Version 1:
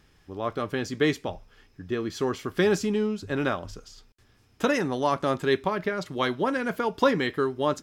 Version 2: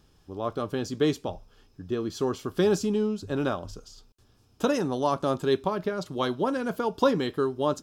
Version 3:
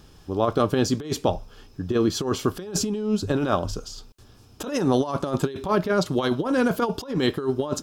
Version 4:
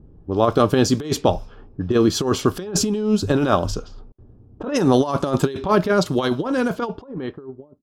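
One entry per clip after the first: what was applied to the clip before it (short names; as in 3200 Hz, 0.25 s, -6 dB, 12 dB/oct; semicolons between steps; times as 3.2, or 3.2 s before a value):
bell 2000 Hz -13 dB 0.66 oct
negative-ratio compressor -29 dBFS, ratio -0.5; gain +7 dB
ending faded out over 2.05 s; low-pass opened by the level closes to 330 Hz, open at -22 dBFS; gain +5 dB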